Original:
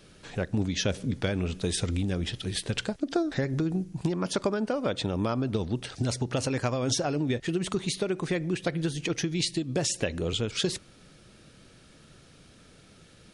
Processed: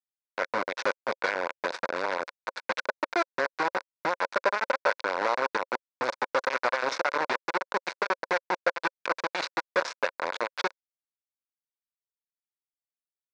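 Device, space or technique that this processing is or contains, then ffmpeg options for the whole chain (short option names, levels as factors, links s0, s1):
hand-held game console: -af "acrusher=bits=3:mix=0:aa=0.000001,highpass=470,equalizer=f=540:t=q:w=4:g=9,equalizer=f=990:t=q:w=4:g=9,equalizer=f=1500:t=q:w=4:g=10,equalizer=f=2200:t=q:w=4:g=5,equalizer=f=3100:t=q:w=4:g=-9,lowpass=f=4900:w=0.5412,lowpass=f=4900:w=1.3066,volume=0.75"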